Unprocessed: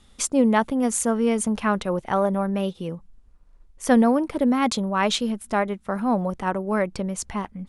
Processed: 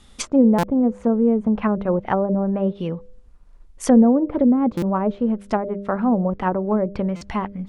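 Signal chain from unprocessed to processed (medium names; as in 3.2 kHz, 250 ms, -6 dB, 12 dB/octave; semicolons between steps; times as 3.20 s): low-pass that closes with the level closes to 520 Hz, closed at -18.5 dBFS; de-hum 100.1 Hz, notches 6; buffer glitch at 0.58/4.77/7.16 s, samples 256, times 8; trim +5 dB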